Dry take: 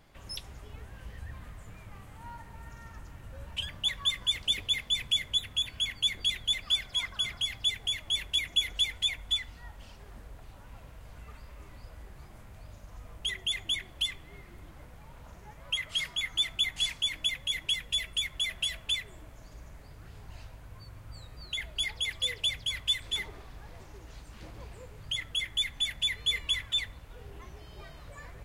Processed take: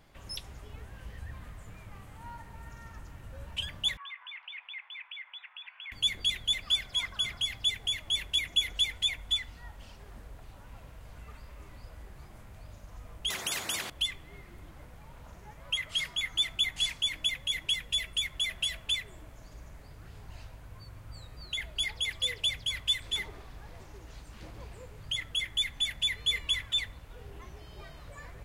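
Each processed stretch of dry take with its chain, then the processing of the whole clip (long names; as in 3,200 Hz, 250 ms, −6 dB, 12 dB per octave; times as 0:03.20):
0:03.97–0:05.92: Chebyshev band-pass filter 870–2,600 Hz, order 3 + downward compressor 2 to 1, threshold −42 dBFS
0:13.30–0:13.90: meter weighting curve A + every bin compressed towards the loudest bin 4 to 1
whole clip: no processing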